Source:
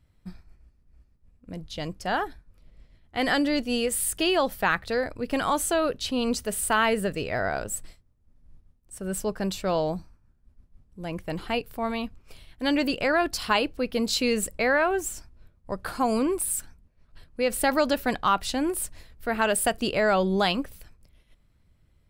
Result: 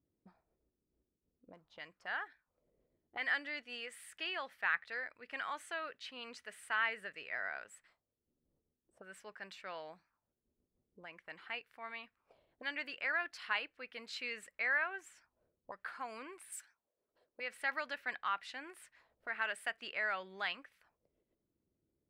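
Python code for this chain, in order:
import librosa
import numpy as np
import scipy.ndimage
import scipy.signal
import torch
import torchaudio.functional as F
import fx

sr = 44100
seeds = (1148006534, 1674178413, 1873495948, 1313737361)

y = fx.auto_wah(x, sr, base_hz=330.0, top_hz=1900.0, q=2.5, full_db=-30.5, direction='up')
y = fx.bass_treble(y, sr, bass_db=-15, treble_db=11, at=(16.52, 17.4))
y = y * librosa.db_to_amplitude(-5.0)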